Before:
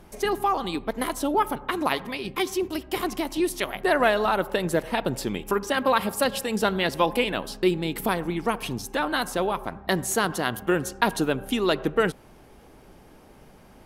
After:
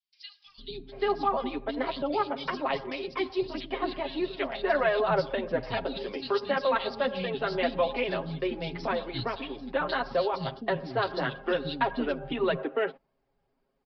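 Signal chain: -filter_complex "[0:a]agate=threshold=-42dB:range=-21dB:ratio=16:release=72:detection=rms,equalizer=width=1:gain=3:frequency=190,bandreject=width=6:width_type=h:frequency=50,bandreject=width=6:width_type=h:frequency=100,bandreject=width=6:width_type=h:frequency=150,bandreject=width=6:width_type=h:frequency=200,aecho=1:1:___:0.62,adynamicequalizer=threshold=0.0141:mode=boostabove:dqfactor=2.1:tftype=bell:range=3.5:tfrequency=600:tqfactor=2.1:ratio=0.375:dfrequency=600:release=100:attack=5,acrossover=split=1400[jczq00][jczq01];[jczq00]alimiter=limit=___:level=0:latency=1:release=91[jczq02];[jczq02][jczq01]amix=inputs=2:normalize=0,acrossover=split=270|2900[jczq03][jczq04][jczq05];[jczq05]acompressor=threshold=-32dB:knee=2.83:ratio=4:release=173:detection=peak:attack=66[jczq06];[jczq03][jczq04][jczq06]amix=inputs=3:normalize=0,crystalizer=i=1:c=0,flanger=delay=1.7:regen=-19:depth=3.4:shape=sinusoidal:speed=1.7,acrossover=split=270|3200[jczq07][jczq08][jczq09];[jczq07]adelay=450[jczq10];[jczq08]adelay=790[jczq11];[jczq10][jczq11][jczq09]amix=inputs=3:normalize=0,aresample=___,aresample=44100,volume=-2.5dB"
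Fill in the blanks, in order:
7.4, -13dB, 11025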